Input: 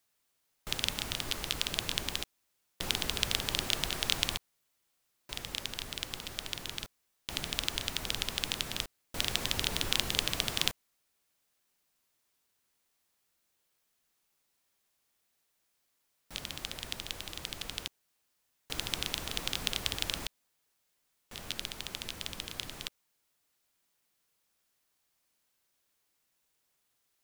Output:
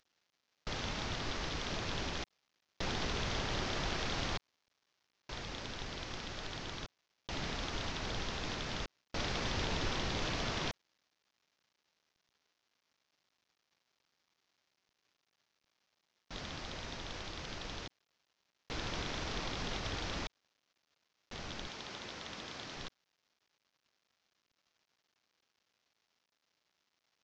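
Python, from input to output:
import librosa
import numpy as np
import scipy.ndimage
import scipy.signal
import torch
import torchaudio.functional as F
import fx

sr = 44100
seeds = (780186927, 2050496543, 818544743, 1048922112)

y = fx.cvsd(x, sr, bps=32000)
y = fx.highpass(y, sr, hz=230.0, slope=6, at=(21.67, 22.77))
y = y * librosa.db_to_amplitude(2.5)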